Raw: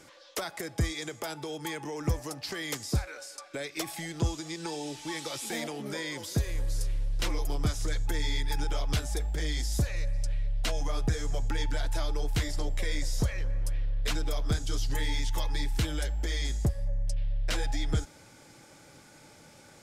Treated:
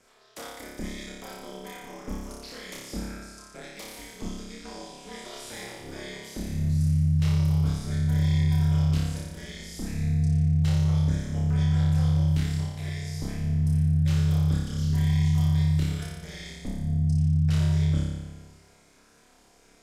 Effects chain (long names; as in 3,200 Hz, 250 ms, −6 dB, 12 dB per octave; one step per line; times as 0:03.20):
flutter between parallel walls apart 5 metres, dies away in 1.2 s
ring modulation 120 Hz
level −6.5 dB